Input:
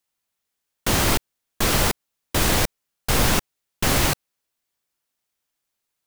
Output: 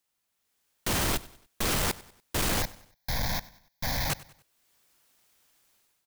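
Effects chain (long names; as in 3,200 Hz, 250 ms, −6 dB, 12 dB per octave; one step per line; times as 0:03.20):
automatic gain control gain up to 13.5 dB
brickwall limiter −9 dBFS, peak gain reduction 8 dB
soft clipping −25 dBFS, distortion −7 dB
0:02.62–0:04.10: phaser with its sweep stopped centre 1,900 Hz, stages 8
repeating echo 96 ms, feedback 43%, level −20 dB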